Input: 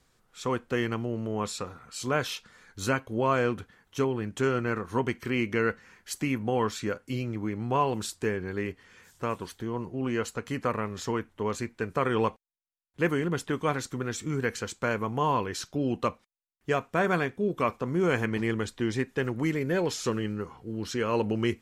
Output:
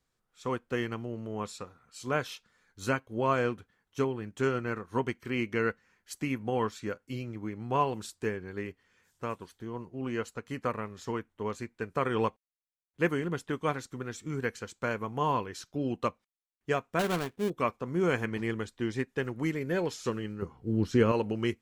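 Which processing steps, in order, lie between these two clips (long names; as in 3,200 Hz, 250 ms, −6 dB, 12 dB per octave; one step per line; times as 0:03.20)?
0:16.99–0:17.50: gap after every zero crossing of 0.25 ms
0:20.42–0:21.12: low-shelf EQ 460 Hz +11 dB
expander for the loud parts 1.5 to 1, over −46 dBFS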